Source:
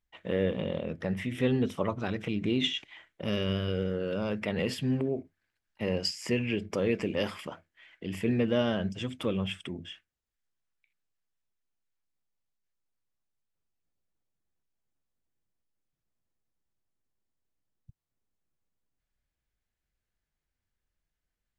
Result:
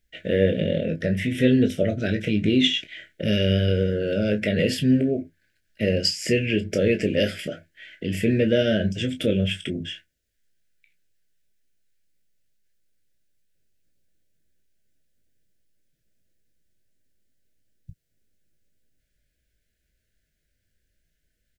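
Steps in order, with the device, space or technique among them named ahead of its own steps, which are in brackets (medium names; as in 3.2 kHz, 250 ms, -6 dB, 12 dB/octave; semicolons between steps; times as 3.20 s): parallel compression (in parallel at -4 dB: compression, threshold -41 dBFS, peak gain reduction 18 dB); on the sum: elliptic band-stop 640–1500 Hz, stop band 60 dB; early reflections 19 ms -8.5 dB, 31 ms -12 dB; trim +7 dB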